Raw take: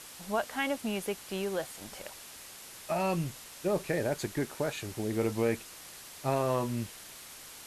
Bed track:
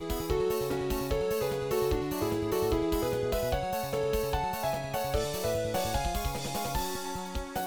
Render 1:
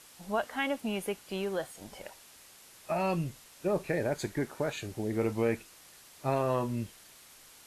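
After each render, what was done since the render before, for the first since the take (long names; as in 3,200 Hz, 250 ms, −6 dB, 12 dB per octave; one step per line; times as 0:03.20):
noise reduction from a noise print 7 dB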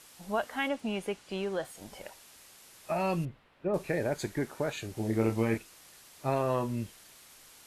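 0:00.68–0:01.65: parametric band 13,000 Hz −14 dB 0.63 octaves
0:03.25–0:03.74: high-frequency loss of the air 480 metres
0:04.94–0:05.58: double-tracking delay 27 ms −3 dB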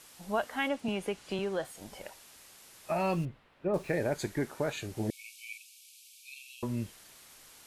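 0:00.88–0:01.39: multiband upward and downward compressor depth 70%
0:03.01–0:03.93: running median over 3 samples
0:05.10–0:06.63: linear-phase brick-wall high-pass 2,200 Hz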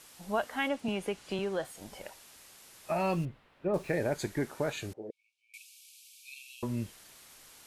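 0:04.93–0:05.54: resonant band-pass 480 Hz, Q 3.7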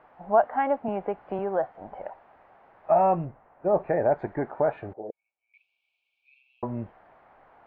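low-pass filter 1,800 Hz 24 dB per octave
parametric band 740 Hz +14.5 dB 0.99 octaves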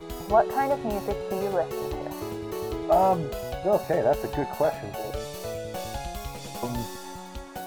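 mix in bed track −3.5 dB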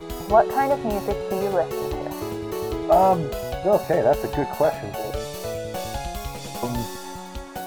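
level +4 dB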